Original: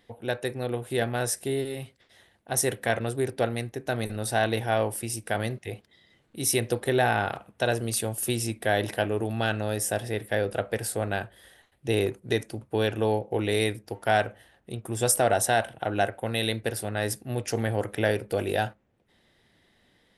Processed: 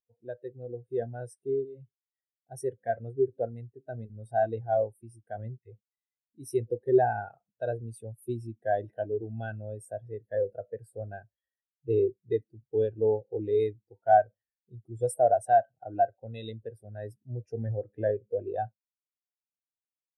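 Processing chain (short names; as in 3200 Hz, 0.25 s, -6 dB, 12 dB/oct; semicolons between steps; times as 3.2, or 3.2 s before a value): G.711 law mismatch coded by mu; spectral expander 2.5:1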